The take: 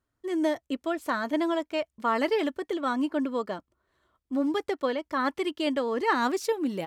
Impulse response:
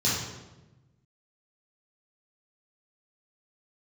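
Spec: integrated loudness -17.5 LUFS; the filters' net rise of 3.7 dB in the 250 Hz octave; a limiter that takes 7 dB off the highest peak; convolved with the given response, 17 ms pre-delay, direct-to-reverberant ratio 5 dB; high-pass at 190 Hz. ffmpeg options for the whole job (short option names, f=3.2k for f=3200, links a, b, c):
-filter_complex "[0:a]highpass=190,equalizer=f=250:t=o:g=5.5,alimiter=limit=-18.5dB:level=0:latency=1,asplit=2[a][b];[1:a]atrim=start_sample=2205,adelay=17[c];[b][c]afir=irnorm=-1:irlink=0,volume=-17dB[d];[a][d]amix=inputs=2:normalize=0,volume=8.5dB"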